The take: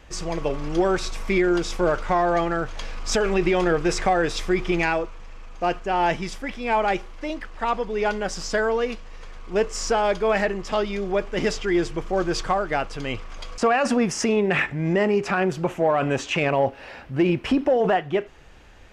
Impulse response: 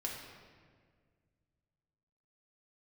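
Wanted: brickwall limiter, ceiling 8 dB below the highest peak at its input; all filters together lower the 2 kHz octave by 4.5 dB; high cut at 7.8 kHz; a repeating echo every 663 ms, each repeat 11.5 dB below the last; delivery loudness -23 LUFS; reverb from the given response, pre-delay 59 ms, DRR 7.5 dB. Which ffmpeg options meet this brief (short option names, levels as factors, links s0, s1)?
-filter_complex "[0:a]lowpass=7800,equalizer=f=2000:t=o:g=-6,alimiter=limit=0.112:level=0:latency=1,aecho=1:1:663|1326|1989:0.266|0.0718|0.0194,asplit=2[s0][s1];[1:a]atrim=start_sample=2205,adelay=59[s2];[s1][s2]afir=irnorm=-1:irlink=0,volume=0.376[s3];[s0][s3]amix=inputs=2:normalize=0,volume=1.68"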